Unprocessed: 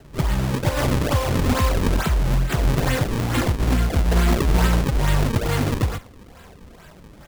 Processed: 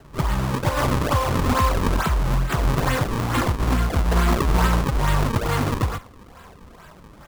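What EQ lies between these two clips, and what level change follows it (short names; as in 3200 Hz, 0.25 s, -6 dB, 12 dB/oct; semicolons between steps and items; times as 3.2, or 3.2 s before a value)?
bell 1100 Hz +7.5 dB 0.76 oct; -1.5 dB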